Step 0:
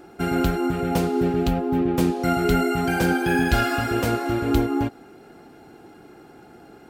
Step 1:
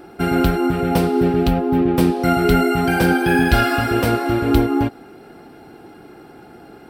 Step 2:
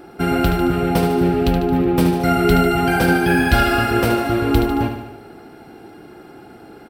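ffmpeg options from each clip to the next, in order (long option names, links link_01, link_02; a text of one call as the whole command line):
ffmpeg -i in.wav -af "equalizer=frequency=6800:width=5.3:gain=-12,volume=5dB" out.wav
ffmpeg -i in.wav -af "aecho=1:1:74|148|222|296|370|444|518|592:0.422|0.249|0.147|0.0866|0.0511|0.0301|0.0178|0.0105" out.wav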